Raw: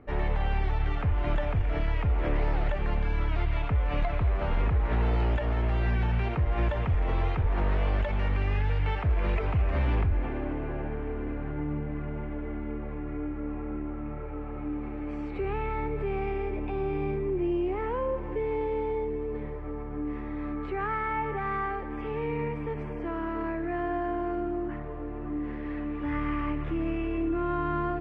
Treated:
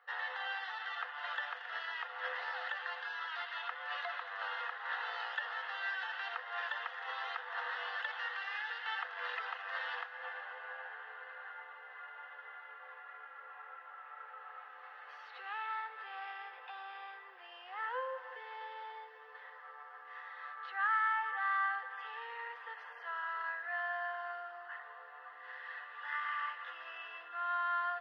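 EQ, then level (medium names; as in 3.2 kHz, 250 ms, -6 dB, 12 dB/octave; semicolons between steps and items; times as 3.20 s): rippled Chebyshev high-pass 490 Hz, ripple 9 dB; treble shelf 2.5 kHz +7.5 dB; static phaser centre 2.3 kHz, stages 6; +5.0 dB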